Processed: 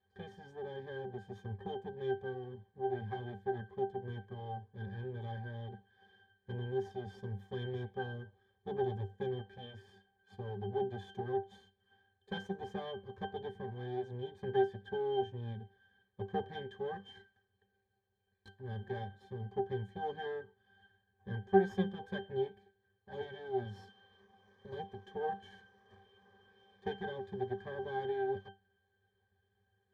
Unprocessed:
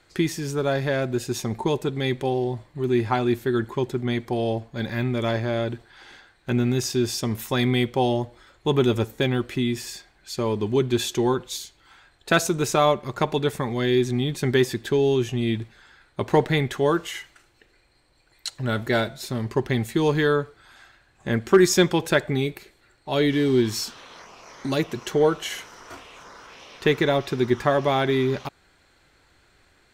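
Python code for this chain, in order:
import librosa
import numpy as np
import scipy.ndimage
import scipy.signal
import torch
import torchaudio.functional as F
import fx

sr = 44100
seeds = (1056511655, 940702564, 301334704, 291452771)

y = fx.lower_of_two(x, sr, delay_ms=1.7)
y = fx.highpass(y, sr, hz=140.0, slope=6)
y = fx.octave_resonator(y, sr, note='G', decay_s=0.21)
y = y * 10.0 ** (1.0 / 20.0)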